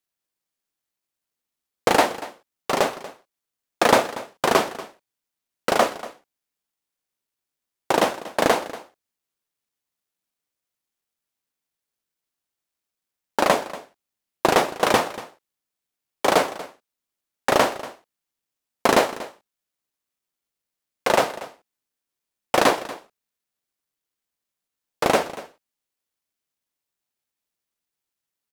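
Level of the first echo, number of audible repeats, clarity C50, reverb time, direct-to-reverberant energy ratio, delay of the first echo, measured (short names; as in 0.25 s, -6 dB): -17.0 dB, 1, none, none, none, 0.237 s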